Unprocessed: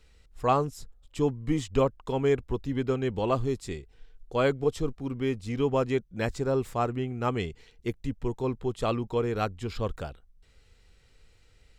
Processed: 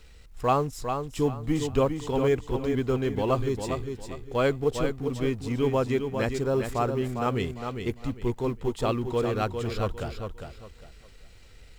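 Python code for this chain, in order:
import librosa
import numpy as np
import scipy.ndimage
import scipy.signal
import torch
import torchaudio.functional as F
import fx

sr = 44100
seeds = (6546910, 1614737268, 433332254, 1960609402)

p1 = fx.law_mismatch(x, sr, coded='mu')
y = p1 + fx.echo_feedback(p1, sr, ms=403, feedback_pct=28, wet_db=-6.5, dry=0)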